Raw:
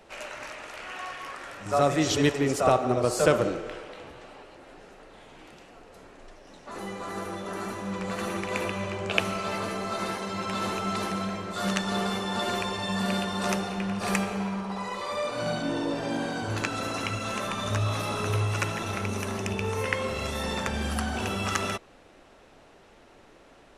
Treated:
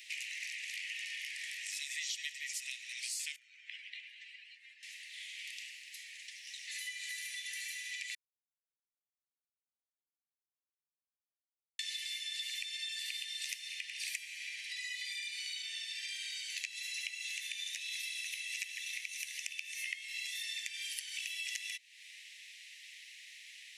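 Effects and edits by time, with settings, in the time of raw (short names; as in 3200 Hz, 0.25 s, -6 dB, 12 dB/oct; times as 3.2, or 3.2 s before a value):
3.36–4.83 spectral contrast raised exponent 1.7
8.15–11.79 mute
whole clip: steep high-pass 1900 Hz 96 dB/oct; compressor 5:1, threshold -51 dBFS; gain +11 dB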